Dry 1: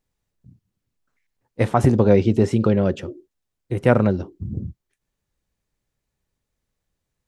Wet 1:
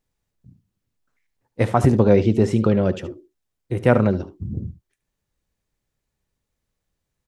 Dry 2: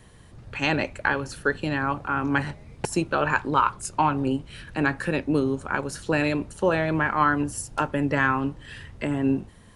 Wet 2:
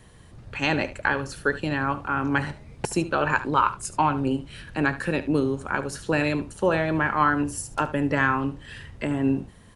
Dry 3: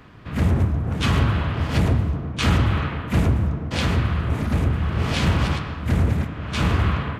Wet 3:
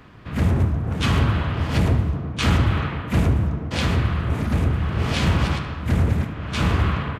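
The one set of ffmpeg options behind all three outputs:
-af "aecho=1:1:73:0.178"

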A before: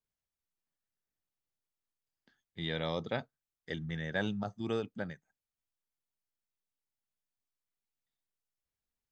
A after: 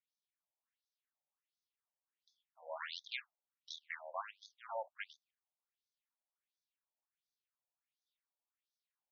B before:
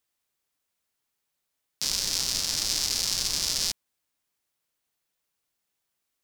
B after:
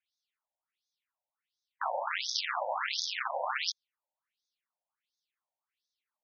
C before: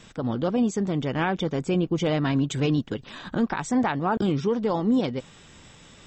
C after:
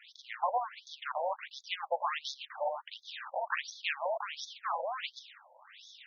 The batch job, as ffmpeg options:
-af "asubboost=boost=12:cutoff=68,aeval=exprs='abs(val(0))':c=same,afftfilt=real='re*between(b*sr/1024,670*pow(4800/670,0.5+0.5*sin(2*PI*1.4*pts/sr))/1.41,670*pow(4800/670,0.5+0.5*sin(2*PI*1.4*pts/sr))*1.41)':imag='im*between(b*sr/1024,670*pow(4800/670,0.5+0.5*sin(2*PI*1.4*pts/sr))/1.41,670*pow(4800/670,0.5+0.5*sin(2*PI*1.4*pts/sr))*1.41)':win_size=1024:overlap=0.75,volume=4dB"

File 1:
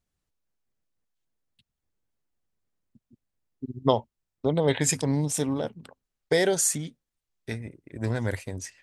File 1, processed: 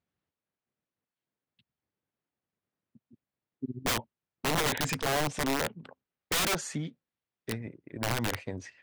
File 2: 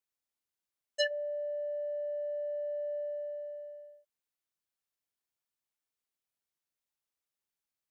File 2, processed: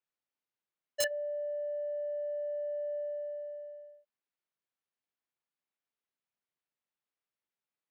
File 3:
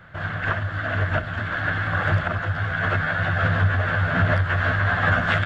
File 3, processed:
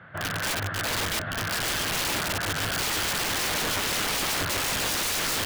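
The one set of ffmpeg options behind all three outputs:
-af "highpass=120,lowpass=3.1k,aeval=exprs='(mod(13.3*val(0)+1,2)-1)/13.3':c=same"

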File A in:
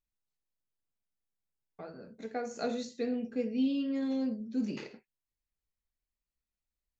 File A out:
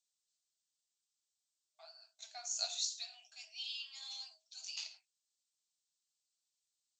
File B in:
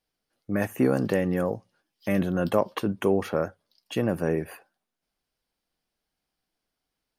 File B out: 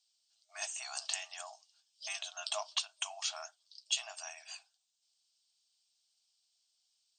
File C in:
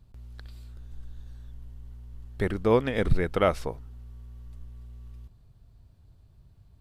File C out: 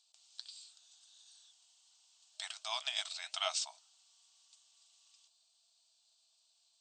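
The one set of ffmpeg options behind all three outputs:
-af "flanger=delay=1.2:depth=8.1:regen=-68:speed=1.4:shape=triangular,aexciter=amount=13.3:drive=5.4:freq=2.9k,afftfilt=real='re*between(b*sr/4096,620,8600)':imag='im*between(b*sr/4096,620,8600)':win_size=4096:overlap=0.75,volume=-8dB"

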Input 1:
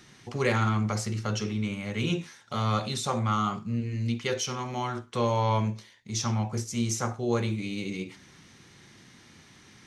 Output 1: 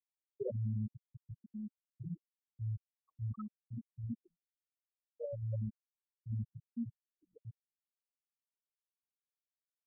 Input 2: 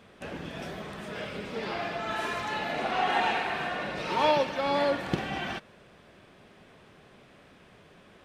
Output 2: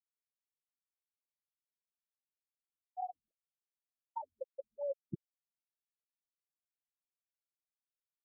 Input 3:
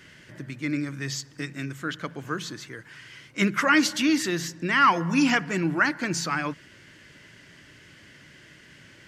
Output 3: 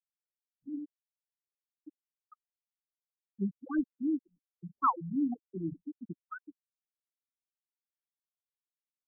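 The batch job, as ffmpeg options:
-af "aeval=exprs='0.447*(cos(1*acos(clip(val(0)/0.447,-1,1)))-cos(1*PI/2))+0.0708*(cos(3*acos(clip(val(0)/0.447,-1,1)))-cos(3*PI/2))+0.0158*(cos(4*acos(clip(val(0)/0.447,-1,1)))-cos(4*PI/2))':c=same,afftfilt=real='re*gte(hypot(re,im),0.2)':imag='im*gte(hypot(re,im),0.2)':win_size=1024:overlap=0.75,afftfilt=real='re*lt(b*sr/1024,200*pow(1800/200,0.5+0.5*sin(2*PI*2.7*pts/sr)))':imag='im*lt(b*sr/1024,200*pow(1800/200,0.5+0.5*sin(2*PI*2.7*pts/sr)))':win_size=1024:overlap=0.75,volume=-3.5dB"

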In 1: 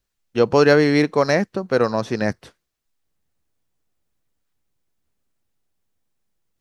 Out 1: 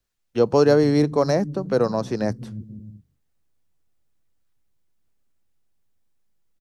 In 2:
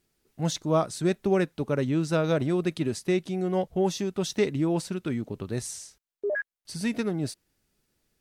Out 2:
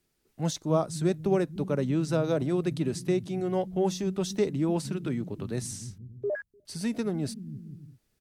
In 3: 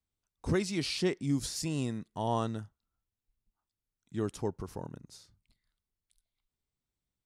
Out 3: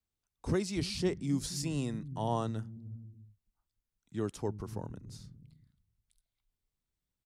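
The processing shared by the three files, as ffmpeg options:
-filter_complex "[0:a]acrossover=split=200|1200|4100[a][b][c][d];[a]aecho=1:1:300|480|588|652.8|691.7:0.631|0.398|0.251|0.158|0.1[e];[c]acompressor=threshold=-44dB:ratio=6[f];[e][b][f][d]amix=inputs=4:normalize=0,volume=-1.5dB"

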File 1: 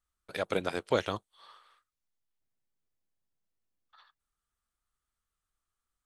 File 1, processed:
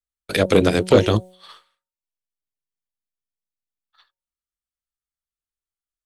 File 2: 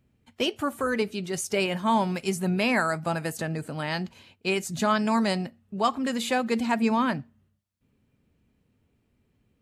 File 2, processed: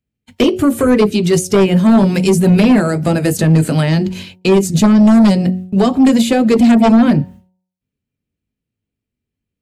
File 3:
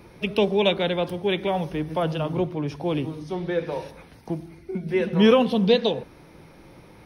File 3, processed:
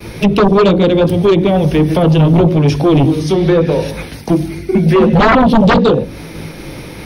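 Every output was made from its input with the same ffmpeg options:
-filter_complex "[0:a]agate=range=-33dB:threshold=-47dB:ratio=3:detection=peak,equalizer=f=980:t=o:w=1.6:g=-8.5,acrossover=split=580[a][b];[a]flanger=delay=18:depth=3.8:speed=0.8[c];[b]acompressor=threshold=-45dB:ratio=8[d];[c][d]amix=inputs=2:normalize=0,bandreject=f=184.1:t=h:w=4,bandreject=f=368.2:t=h:w=4,bandreject=f=552.3:t=h:w=4,bandreject=f=736.4:t=h:w=4,bandreject=f=920.5:t=h:w=4,aeval=exprs='0.282*sin(PI/2*5.62*val(0)/0.282)':c=same,volume=6dB"

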